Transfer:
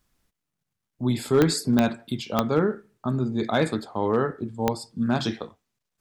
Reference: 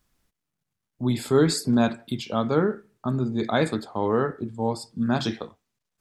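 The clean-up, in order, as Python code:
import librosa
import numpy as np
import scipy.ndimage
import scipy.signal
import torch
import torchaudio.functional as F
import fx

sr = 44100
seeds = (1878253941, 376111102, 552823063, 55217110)

y = fx.fix_declip(x, sr, threshold_db=-11.5)
y = fx.fix_declick_ar(y, sr, threshold=10.0)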